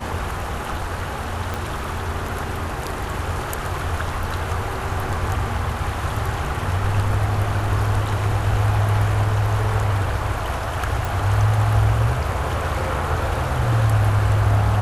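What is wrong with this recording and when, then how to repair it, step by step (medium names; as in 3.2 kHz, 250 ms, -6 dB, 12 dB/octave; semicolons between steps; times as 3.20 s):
1.54 s: pop
11.05 s: pop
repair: de-click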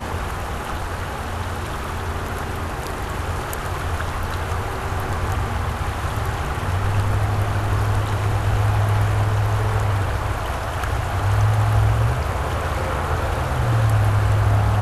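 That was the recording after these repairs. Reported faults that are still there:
1.54 s: pop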